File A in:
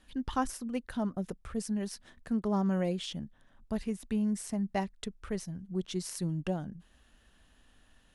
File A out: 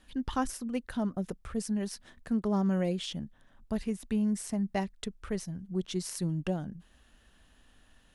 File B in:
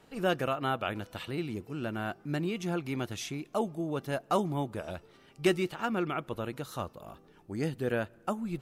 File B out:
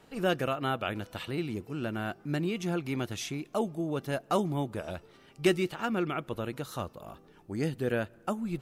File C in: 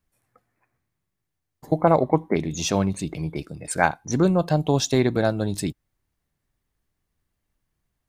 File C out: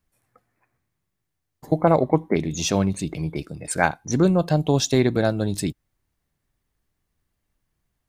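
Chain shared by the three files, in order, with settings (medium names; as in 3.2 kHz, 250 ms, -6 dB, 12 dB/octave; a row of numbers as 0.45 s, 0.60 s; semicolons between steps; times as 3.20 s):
dynamic bell 950 Hz, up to -3 dB, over -40 dBFS, Q 1.2; trim +1.5 dB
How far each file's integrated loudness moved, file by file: +1.0 LU, +1.0 LU, +1.0 LU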